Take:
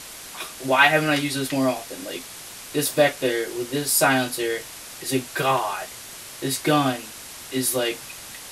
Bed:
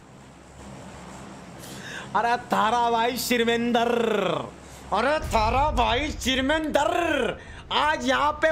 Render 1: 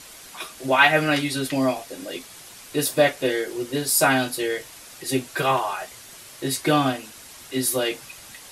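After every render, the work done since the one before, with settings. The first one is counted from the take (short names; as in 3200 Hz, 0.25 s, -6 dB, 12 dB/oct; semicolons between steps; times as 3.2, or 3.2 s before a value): denoiser 6 dB, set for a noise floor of -40 dBFS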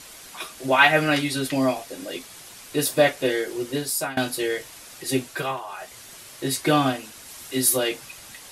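3.71–4.17 fade out, to -22.5 dB; 5.23–6 dip -10 dB, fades 0.33 s; 7.26–7.76 high shelf 8300 Hz -> 5000 Hz +5.5 dB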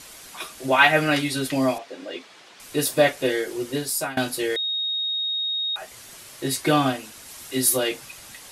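1.78–2.6 BPF 270–3800 Hz; 4.56–5.76 bleep 3740 Hz -23 dBFS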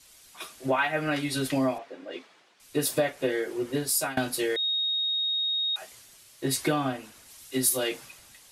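compressor 12:1, threshold -23 dBFS, peak gain reduction 13 dB; three-band expander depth 70%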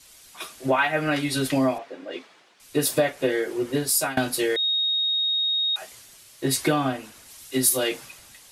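gain +4 dB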